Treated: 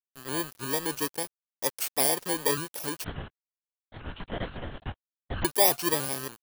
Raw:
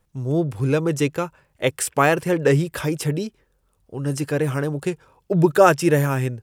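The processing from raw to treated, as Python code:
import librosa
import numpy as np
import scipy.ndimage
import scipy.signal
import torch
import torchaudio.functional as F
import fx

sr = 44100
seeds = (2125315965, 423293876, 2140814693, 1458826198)

y = fx.bit_reversed(x, sr, seeds[0], block=32)
y = scipy.signal.sosfilt(scipy.signal.butter(2, 210.0, 'highpass', fs=sr, output='sos'), y)
y = fx.low_shelf(y, sr, hz=400.0, db=-7.5)
y = fx.notch(y, sr, hz=2000.0, q=6.2)
y = fx.comb_fb(y, sr, f0_hz=740.0, decay_s=0.42, harmonics='all', damping=0.0, mix_pct=50)
y = np.where(np.abs(y) >= 10.0 ** (-40.0 / 20.0), y, 0.0)
y = fx.lpc_vocoder(y, sr, seeds[1], excitation='whisper', order=10, at=(3.04, 5.45))
y = fx.vibrato_shape(y, sr, shape='saw_up', rate_hz=3.5, depth_cents=100.0)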